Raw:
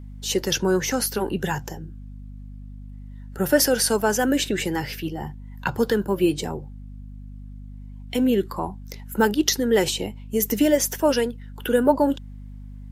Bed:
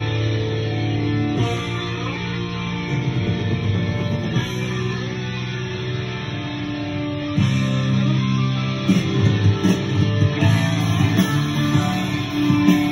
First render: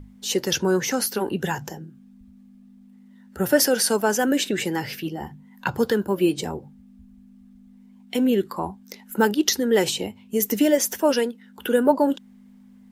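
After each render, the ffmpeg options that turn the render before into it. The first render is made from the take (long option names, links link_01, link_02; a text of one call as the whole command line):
ffmpeg -i in.wav -af "bandreject=frequency=50:width_type=h:width=6,bandreject=frequency=100:width_type=h:width=6,bandreject=frequency=150:width_type=h:width=6" out.wav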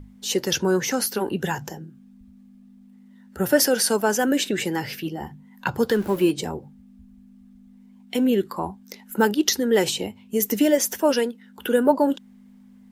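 ffmpeg -i in.wav -filter_complex "[0:a]asettb=1/sr,asplit=3[link_01][link_02][link_03];[link_01]atrim=end=5.904[link_04];[link_02]atrim=start=5.9:end=6.31,asetpts=PTS-STARTPTS,afade=type=in:duration=0.004:curve=qsin,afade=type=out:start_time=0.406:duration=0.004:curve=qsin,aeval=exprs='val(0)+0.5*0.0178*sgn(val(0))':channel_layout=same[link_05];[link_03]atrim=start=6.306[link_06];[link_04][link_05]acrossfade=duration=0.004:curve1=hsin:curve2=qsin[link_07];[link_07][link_06]acrossfade=duration=0.004:curve1=qsin:curve2=hsin" out.wav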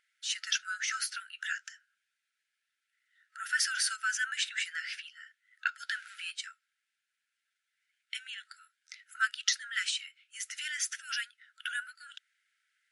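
ffmpeg -i in.wav -af "afftfilt=real='re*between(b*sr/4096,1300,11000)':imag='im*between(b*sr/4096,1300,11000)':win_size=4096:overlap=0.75,highshelf=frequency=3400:gain=-10" out.wav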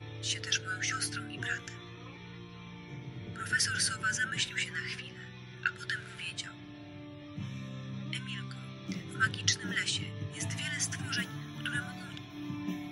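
ffmpeg -i in.wav -i bed.wav -filter_complex "[1:a]volume=-22.5dB[link_01];[0:a][link_01]amix=inputs=2:normalize=0" out.wav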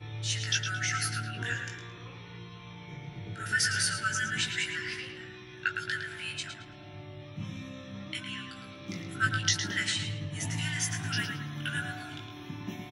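ffmpeg -i in.wav -filter_complex "[0:a]asplit=2[link_01][link_02];[link_02]adelay=19,volume=-4dB[link_03];[link_01][link_03]amix=inputs=2:normalize=0,asplit=2[link_04][link_05];[link_05]adelay=110,lowpass=frequency=4200:poles=1,volume=-5.5dB,asplit=2[link_06][link_07];[link_07]adelay=110,lowpass=frequency=4200:poles=1,volume=0.42,asplit=2[link_08][link_09];[link_09]adelay=110,lowpass=frequency=4200:poles=1,volume=0.42,asplit=2[link_10][link_11];[link_11]adelay=110,lowpass=frequency=4200:poles=1,volume=0.42,asplit=2[link_12][link_13];[link_13]adelay=110,lowpass=frequency=4200:poles=1,volume=0.42[link_14];[link_04][link_06][link_08][link_10][link_12][link_14]amix=inputs=6:normalize=0" out.wav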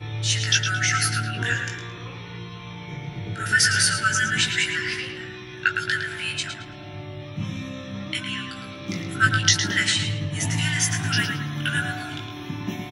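ffmpeg -i in.wav -af "volume=9dB" out.wav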